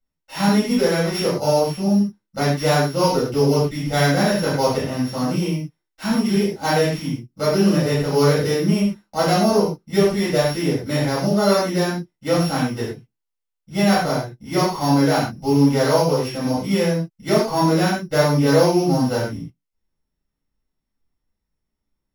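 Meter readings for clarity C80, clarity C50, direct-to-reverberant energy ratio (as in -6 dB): 6.0 dB, 2.5 dB, -9.5 dB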